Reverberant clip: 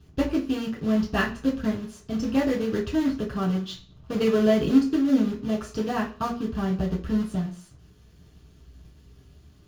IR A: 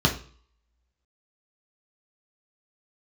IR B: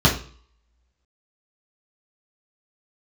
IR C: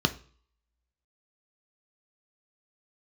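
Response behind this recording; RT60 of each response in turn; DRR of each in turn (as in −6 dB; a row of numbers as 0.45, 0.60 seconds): B; 0.45, 0.45, 0.45 seconds; −0.5, −5.0, 8.0 decibels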